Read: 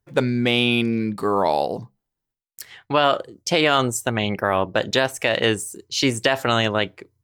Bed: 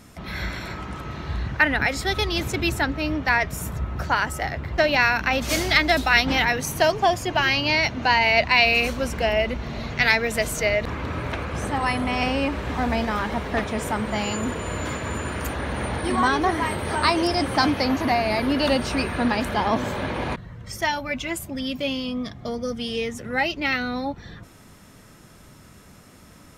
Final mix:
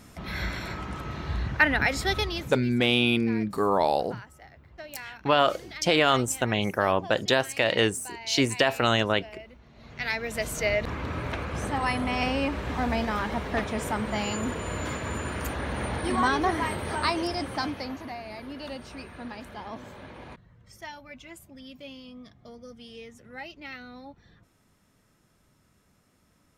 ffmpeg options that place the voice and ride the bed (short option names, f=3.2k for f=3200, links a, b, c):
-filter_complex "[0:a]adelay=2350,volume=-3.5dB[a];[1:a]volume=17.5dB,afade=t=out:st=2.11:d=0.48:silence=0.0891251,afade=t=in:st=9.75:d=0.98:silence=0.105925,afade=t=out:st=16.56:d=1.56:silence=0.211349[b];[a][b]amix=inputs=2:normalize=0"